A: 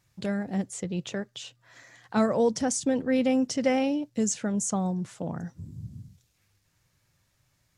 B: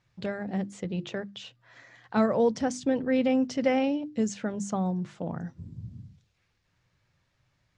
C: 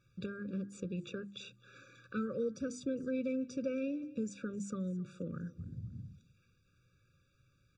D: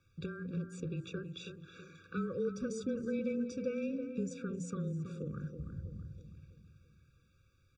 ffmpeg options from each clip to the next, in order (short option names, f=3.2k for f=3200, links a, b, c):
-af "lowpass=4k,bandreject=f=50:t=h:w=6,bandreject=f=100:t=h:w=6,bandreject=f=150:t=h:w=6,bandreject=f=200:t=h:w=6,bandreject=f=250:t=h:w=6,bandreject=f=300:t=h:w=6,bandreject=f=350:t=h:w=6"
-af "acompressor=threshold=-44dB:ratio=2,aecho=1:1:264|528|792:0.0794|0.0302|0.0115,afftfilt=real='re*eq(mod(floor(b*sr/1024/560),2),0)':imag='im*eq(mod(floor(b*sr/1024/560),2),0)':win_size=1024:overlap=0.75,volume=1dB"
-filter_complex "[0:a]afreqshift=-23,asplit=2[a][b];[b]adelay=325,lowpass=f=1.7k:p=1,volume=-8dB,asplit=2[c][d];[d]adelay=325,lowpass=f=1.7k:p=1,volume=0.48,asplit=2[e][f];[f]adelay=325,lowpass=f=1.7k:p=1,volume=0.48,asplit=2[g][h];[h]adelay=325,lowpass=f=1.7k:p=1,volume=0.48,asplit=2[i][j];[j]adelay=325,lowpass=f=1.7k:p=1,volume=0.48,asplit=2[k][l];[l]adelay=325,lowpass=f=1.7k:p=1,volume=0.48[m];[a][c][e][g][i][k][m]amix=inputs=7:normalize=0"